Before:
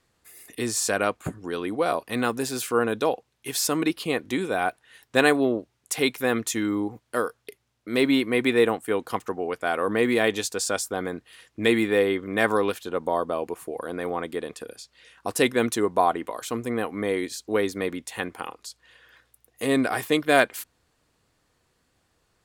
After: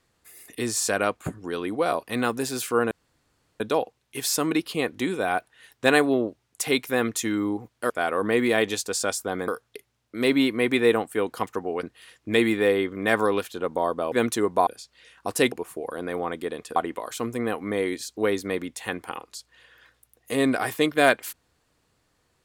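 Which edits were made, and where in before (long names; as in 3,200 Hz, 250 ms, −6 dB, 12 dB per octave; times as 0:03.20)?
0:02.91: splice in room tone 0.69 s
0:09.56–0:11.14: move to 0:07.21
0:13.43–0:14.67: swap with 0:15.52–0:16.07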